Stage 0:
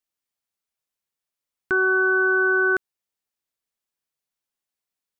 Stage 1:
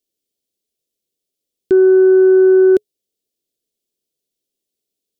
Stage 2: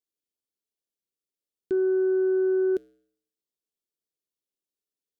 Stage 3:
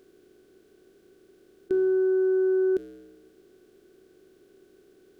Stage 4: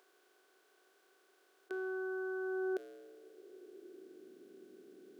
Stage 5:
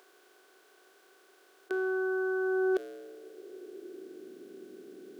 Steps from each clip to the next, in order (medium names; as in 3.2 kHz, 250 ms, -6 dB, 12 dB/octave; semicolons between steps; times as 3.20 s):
FFT filter 130 Hz 0 dB, 420 Hz +11 dB, 670 Hz -2 dB, 960 Hz -22 dB, 1.4 kHz -20 dB, 3.3 kHz +1 dB; trim +5.5 dB
feedback comb 63 Hz, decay 0.66 s, harmonics odd, mix 60%; trim -6.5 dB
spectral levelling over time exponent 0.4
high-pass sweep 900 Hz -> 230 Hz, 2.39–4.42 s; trim -3.5 dB
hard clipper -30 dBFS, distortion -36 dB; trim +8.5 dB